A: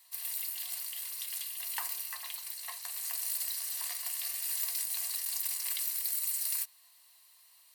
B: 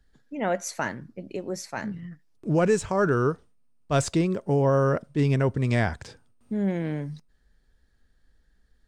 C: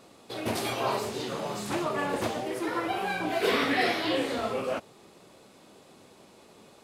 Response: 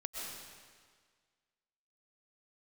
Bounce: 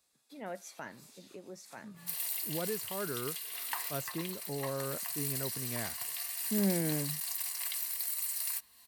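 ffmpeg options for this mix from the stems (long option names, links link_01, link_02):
-filter_complex "[0:a]adynamicequalizer=threshold=0.002:dfrequency=2500:dqfactor=0.7:tfrequency=2500:tqfactor=0.7:attack=5:release=100:ratio=0.375:range=2.5:mode=cutabove:tftype=highshelf,adelay=1950,volume=2.5dB[link_01];[1:a]volume=-3.5dB,afade=type=in:start_time=6.32:duration=0.24:silence=0.251189,asplit=2[link_02][link_03];[2:a]aderivative,bandreject=frequency=3000:width=12,volume=-11.5dB[link_04];[link_03]apad=whole_len=301512[link_05];[link_04][link_05]sidechaincompress=threshold=-53dB:ratio=4:attack=30:release=240[link_06];[link_01][link_02][link_06]amix=inputs=3:normalize=0,highpass=130"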